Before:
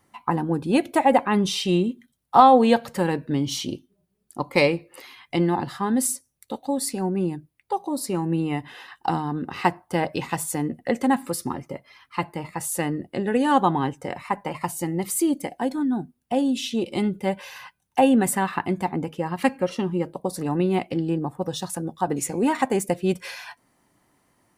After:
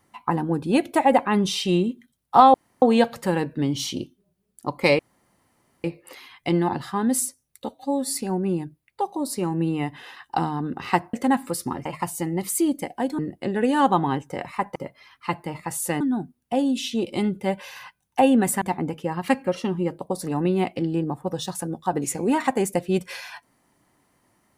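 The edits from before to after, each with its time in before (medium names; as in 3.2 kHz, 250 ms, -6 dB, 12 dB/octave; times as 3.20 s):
2.54 s: insert room tone 0.28 s
4.71 s: insert room tone 0.85 s
6.56–6.87 s: stretch 1.5×
9.85–10.93 s: delete
11.65–12.90 s: swap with 14.47–15.80 s
18.41–18.76 s: delete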